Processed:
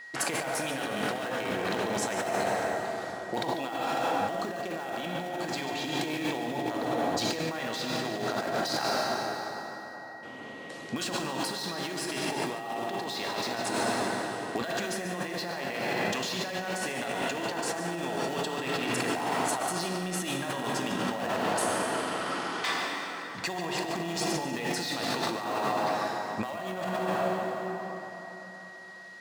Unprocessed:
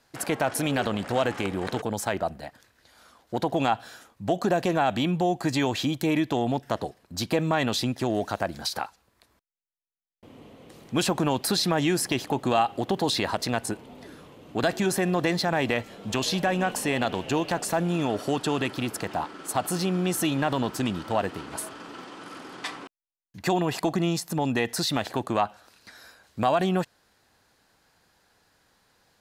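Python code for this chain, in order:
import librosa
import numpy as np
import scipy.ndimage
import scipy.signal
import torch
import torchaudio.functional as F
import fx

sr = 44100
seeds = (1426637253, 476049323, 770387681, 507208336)

p1 = scipy.signal.sosfilt(scipy.signal.butter(2, 7900.0, 'lowpass', fs=sr, output='sos'), x)
p2 = fx.low_shelf(p1, sr, hz=400.0, db=-9.0)
p3 = (np.mod(10.0 ** (24.0 / 20.0) * p2 + 1.0, 2.0) - 1.0) / 10.0 ** (24.0 / 20.0)
p4 = p2 + (p3 * librosa.db_to_amplitude(-11.0))
p5 = scipy.signal.sosfilt(scipy.signal.butter(2, 120.0, 'highpass', fs=sr, output='sos'), p4)
p6 = fx.rev_plate(p5, sr, seeds[0], rt60_s=4.0, hf_ratio=0.6, predelay_ms=0, drr_db=0.0)
p7 = fx.over_compress(p6, sr, threshold_db=-32.0, ratio=-1.0)
p8 = p7 + 10.0 ** (-43.0 / 20.0) * np.sin(2.0 * np.pi * 1900.0 * np.arange(len(p7)) / sr)
y = p8 + fx.echo_single(p8, sr, ms=144, db=-12.0, dry=0)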